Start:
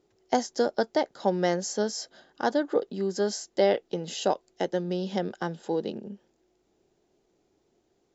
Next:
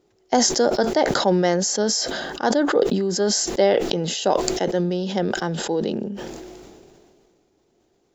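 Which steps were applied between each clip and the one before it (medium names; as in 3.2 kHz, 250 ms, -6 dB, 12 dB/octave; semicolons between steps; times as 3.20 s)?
decay stretcher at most 26 dB/s; trim +4.5 dB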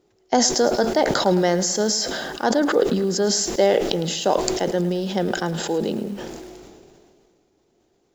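bit-crushed delay 108 ms, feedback 55%, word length 6-bit, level -14 dB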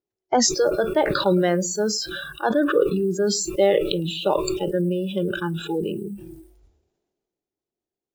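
spectral noise reduction 26 dB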